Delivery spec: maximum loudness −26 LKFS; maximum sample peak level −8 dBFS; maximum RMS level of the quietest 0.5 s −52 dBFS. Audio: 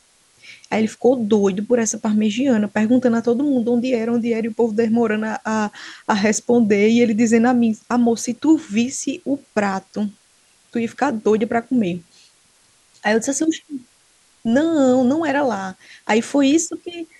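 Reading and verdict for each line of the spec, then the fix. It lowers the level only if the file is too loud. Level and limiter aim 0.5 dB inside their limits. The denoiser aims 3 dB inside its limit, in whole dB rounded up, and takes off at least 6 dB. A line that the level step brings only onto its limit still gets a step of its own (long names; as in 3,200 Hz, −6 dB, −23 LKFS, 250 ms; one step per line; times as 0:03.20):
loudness −19.0 LKFS: out of spec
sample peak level −4.5 dBFS: out of spec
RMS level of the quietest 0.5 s −56 dBFS: in spec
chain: level −7.5 dB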